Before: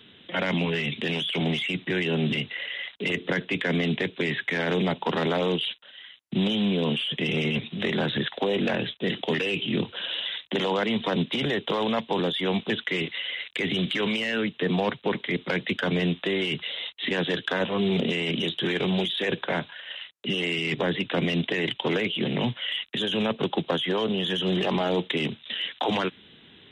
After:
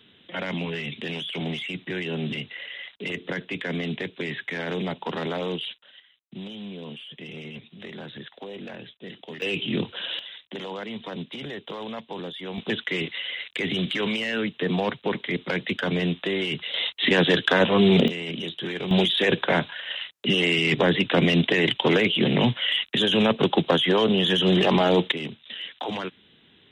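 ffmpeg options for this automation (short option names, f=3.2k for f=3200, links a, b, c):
-af "asetnsamples=n=441:p=0,asendcmd='6 volume volume -13dB;9.42 volume volume 0dB;10.19 volume volume -9dB;12.58 volume volume 0dB;16.74 volume volume 7dB;18.08 volume volume -4.5dB;18.91 volume volume 5.5dB;25.12 volume volume -5dB',volume=-4dB"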